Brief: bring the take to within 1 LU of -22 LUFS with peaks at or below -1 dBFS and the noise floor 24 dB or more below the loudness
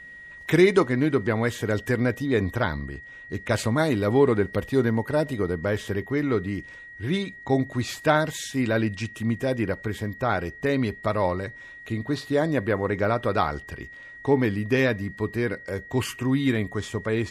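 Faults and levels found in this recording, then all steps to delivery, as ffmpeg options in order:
steady tone 1.9 kHz; tone level -41 dBFS; loudness -25.0 LUFS; peak level -6.5 dBFS; loudness target -22.0 LUFS
-> -af "bandreject=f=1900:w=30"
-af "volume=1.41"

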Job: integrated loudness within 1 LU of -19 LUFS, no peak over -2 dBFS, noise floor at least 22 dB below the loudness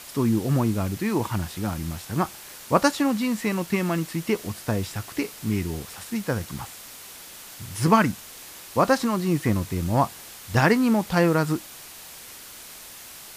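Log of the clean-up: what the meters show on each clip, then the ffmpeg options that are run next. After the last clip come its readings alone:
noise floor -43 dBFS; noise floor target -47 dBFS; loudness -24.5 LUFS; peak level -4.0 dBFS; loudness target -19.0 LUFS
-> -af "afftdn=nr=6:nf=-43"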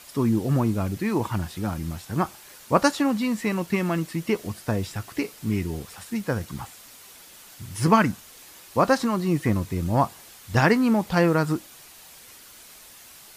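noise floor -48 dBFS; loudness -24.5 LUFS; peak level -4.0 dBFS; loudness target -19.0 LUFS
-> -af "volume=1.88,alimiter=limit=0.794:level=0:latency=1"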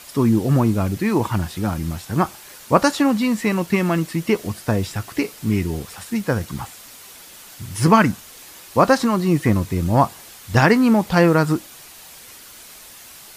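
loudness -19.5 LUFS; peak level -2.0 dBFS; noise floor -42 dBFS

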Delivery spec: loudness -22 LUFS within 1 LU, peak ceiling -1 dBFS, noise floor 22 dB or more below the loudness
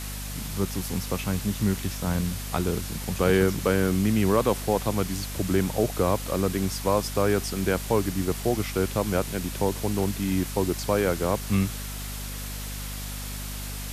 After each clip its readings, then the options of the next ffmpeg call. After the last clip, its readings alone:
hum 50 Hz; highest harmonic 250 Hz; hum level -33 dBFS; noise floor -34 dBFS; noise floor target -49 dBFS; loudness -26.5 LUFS; peak level -8.5 dBFS; loudness target -22.0 LUFS
-> -af "bandreject=f=50:t=h:w=4,bandreject=f=100:t=h:w=4,bandreject=f=150:t=h:w=4,bandreject=f=200:t=h:w=4,bandreject=f=250:t=h:w=4"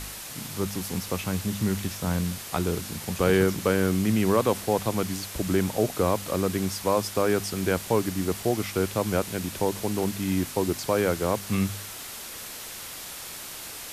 hum not found; noise floor -39 dBFS; noise floor target -49 dBFS
-> -af "afftdn=nr=10:nf=-39"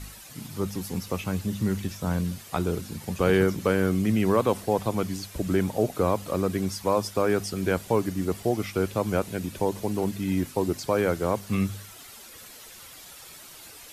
noise floor -46 dBFS; noise floor target -49 dBFS
-> -af "afftdn=nr=6:nf=-46"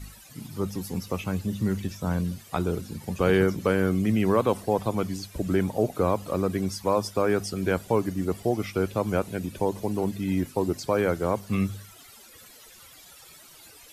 noise floor -50 dBFS; loudness -27.0 LUFS; peak level -8.5 dBFS; loudness target -22.0 LUFS
-> -af "volume=1.78"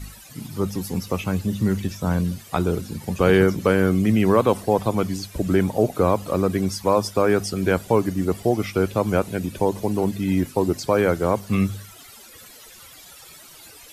loudness -22.0 LUFS; peak level -3.5 dBFS; noise floor -45 dBFS

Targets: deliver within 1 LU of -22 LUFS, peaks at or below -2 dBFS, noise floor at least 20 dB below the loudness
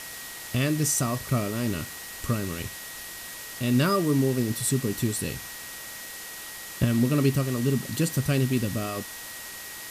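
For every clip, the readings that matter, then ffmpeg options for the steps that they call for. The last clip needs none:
steady tone 1.9 kHz; tone level -44 dBFS; noise floor -40 dBFS; noise floor target -48 dBFS; loudness -27.5 LUFS; peak level -9.5 dBFS; loudness target -22.0 LUFS
-> -af "bandreject=f=1900:w=30"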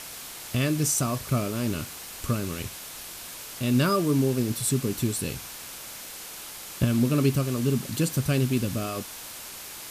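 steady tone not found; noise floor -41 dBFS; noise floor target -48 dBFS
-> -af "afftdn=nr=7:nf=-41"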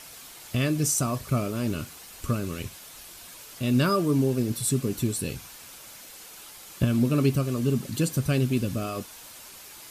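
noise floor -46 dBFS; noise floor target -47 dBFS
-> -af "afftdn=nr=6:nf=-46"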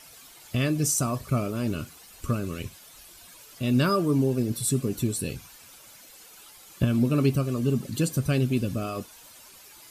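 noise floor -50 dBFS; loudness -26.5 LUFS; peak level -10.0 dBFS; loudness target -22.0 LUFS
-> -af "volume=1.68"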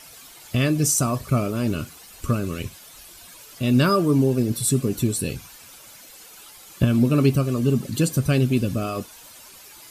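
loudness -22.0 LUFS; peak level -5.5 dBFS; noise floor -46 dBFS

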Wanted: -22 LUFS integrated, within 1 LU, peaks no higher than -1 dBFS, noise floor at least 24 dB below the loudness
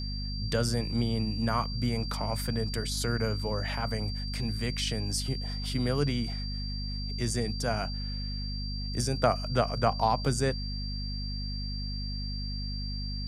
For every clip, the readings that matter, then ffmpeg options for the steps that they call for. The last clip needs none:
hum 50 Hz; highest harmonic 250 Hz; hum level -32 dBFS; steady tone 4.7 kHz; tone level -39 dBFS; loudness -31.0 LUFS; peak level -9.5 dBFS; loudness target -22.0 LUFS
-> -af "bandreject=f=50:t=h:w=4,bandreject=f=100:t=h:w=4,bandreject=f=150:t=h:w=4,bandreject=f=200:t=h:w=4,bandreject=f=250:t=h:w=4"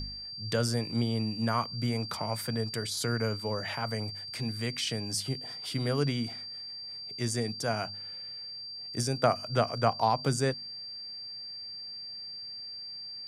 hum not found; steady tone 4.7 kHz; tone level -39 dBFS
-> -af "bandreject=f=4700:w=30"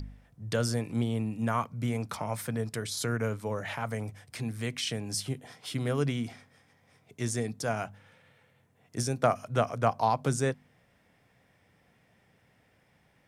steady tone not found; loudness -32.0 LUFS; peak level -10.0 dBFS; loudness target -22.0 LUFS
-> -af "volume=3.16,alimiter=limit=0.891:level=0:latency=1"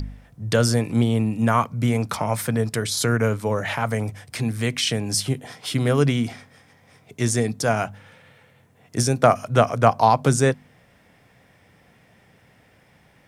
loudness -22.0 LUFS; peak level -1.0 dBFS; noise floor -57 dBFS

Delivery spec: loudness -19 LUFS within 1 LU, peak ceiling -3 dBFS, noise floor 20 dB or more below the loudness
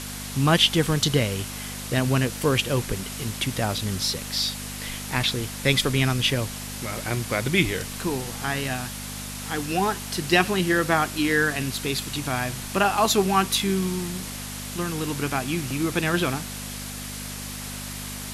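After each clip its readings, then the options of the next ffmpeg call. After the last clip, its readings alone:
hum 50 Hz; highest harmonic 250 Hz; hum level -35 dBFS; noise floor -35 dBFS; noise floor target -45 dBFS; loudness -24.5 LUFS; peak level -4.0 dBFS; loudness target -19.0 LUFS
-> -af "bandreject=f=50:t=h:w=4,bandreject=f=100:t=h:w=4,bandreject=f=150:t=h:w=4,bandreject=f=200:t=h:w=4,bandreject=f=250:t=h:w=4"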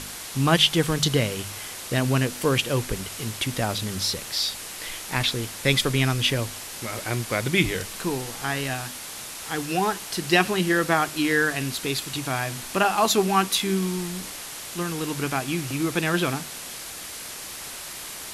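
hum not found; noise floor -37 dBFS; noise floor target -45 dBFS
-> -af "afftdn=nr=8:nf=-37"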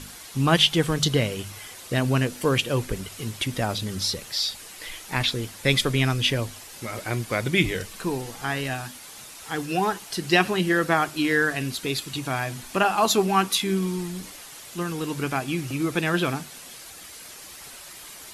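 noise floor -43 dBFS; noise floor target -45 dBFS
-> -af "afftdn=nr=6:nf=-43"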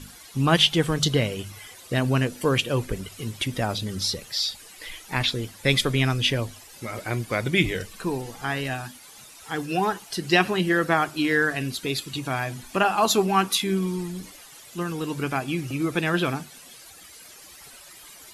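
noise floor -47 dBFS; loudness -24.5 LUFS; peak level -3.5 dBFS; loudness target -19.0 LUFS
-> -af "volume=1.88,alimiter=limit=0.708:level=0:latency=1"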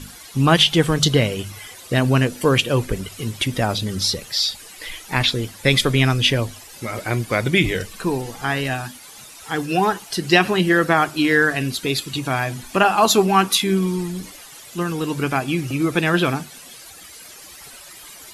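loudness -19.5 LUFS; peak level -3.0 dBFS; noise floor -42 dBFS

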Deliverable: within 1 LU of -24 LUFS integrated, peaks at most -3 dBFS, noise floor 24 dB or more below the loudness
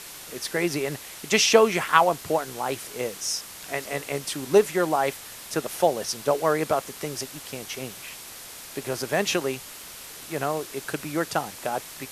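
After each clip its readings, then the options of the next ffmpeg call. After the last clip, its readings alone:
noise floor -42 dBFS; noise floor target -50 dBFS; loudness -25.5 LUFS; peak level -2.0 dBFS; loudness target -24.0 LUFS
-> -af "afftdn=nr=8:nf=-42"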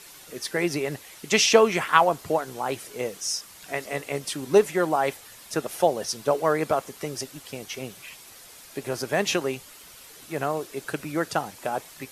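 noise floor -48 dBFS; noise floor target -50 dBFS
-> -af "afftdn=nr=6:nf=-48"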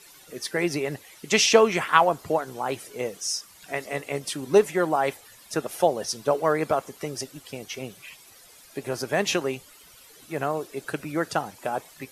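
noise floor -51 dBFS; loudness -25.5 LUFS; peak level -2.0 dBFS; loudness target -24.0 LUFS
-> -af "volume=1.19,alimiter=limit=0.708:level=0:latency=1"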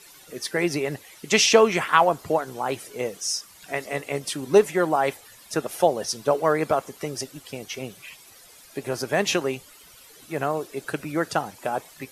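loudness -24.5 LUFS; peak level -3.0 dBFS; noise floor -50 dBFS

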